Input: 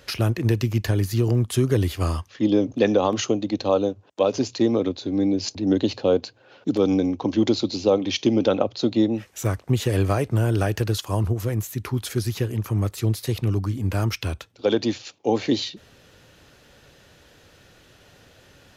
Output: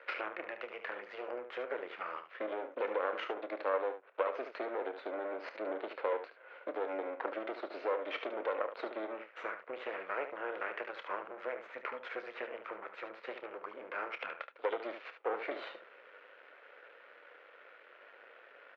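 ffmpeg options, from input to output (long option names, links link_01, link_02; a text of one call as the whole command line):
ffmpeg -i in.wav -af "alimiter=limit=-11.5dB:level=0:latency=1:release=174,acompressor=threshold=-27dB:ratio=5,aeval=exprs='max(val(0),0)':channel_layout=same,highpass=frequency=460:width=0.5412,highpass=frequency=460:width=1.3066,equalizer=frequency=500:width_type=q:width=4:gain=4,equalizer=frequency=800:width_type=q:width=4:gain=-4,equalizer=frequency=1400:width_type=q:width=4:gain=6,equalizer=frequency=2200:width_type=q:width=4:gain=4,lowpass=frequency=2400:width=0.5412,lowpass=frequency=2400:width=1.3066,aecho=1:1:28|73:0.224|0.335,volume=1.5dB" out.wav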